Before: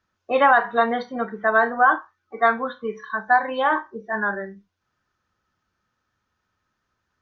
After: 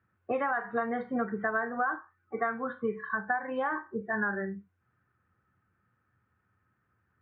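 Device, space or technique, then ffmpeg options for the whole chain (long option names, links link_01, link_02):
bass amplifier: -af "acompressor=threshold=-27dB:ratio=5,highpass=69,equalizer=frequency=86:width_type=q:width=4:gain=6,equalizer=frequency=120:width_type=q:width=4:gain=9,equalizer=frequency=180:width_type=q:width=4:gain=3,equalizer=frequency=610:width_type=q:width=4:gain=-6,equalizer=frequency=960:width_type=q:width=4:gain=-6,lowpass=frequency=2100:width=0.5412,lowpass=frequency=2100:width=1.3066,volume=1dB"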